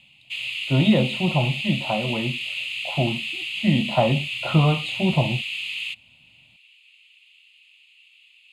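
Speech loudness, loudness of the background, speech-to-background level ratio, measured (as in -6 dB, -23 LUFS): -23.5 LUFS, -27.5 LUFS, 4.0 dB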